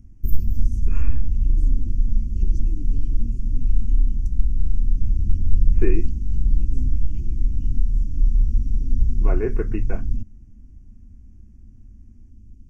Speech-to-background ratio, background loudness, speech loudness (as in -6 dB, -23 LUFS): -4.5 dB, -25.5 LUFS, -30.0 LUFS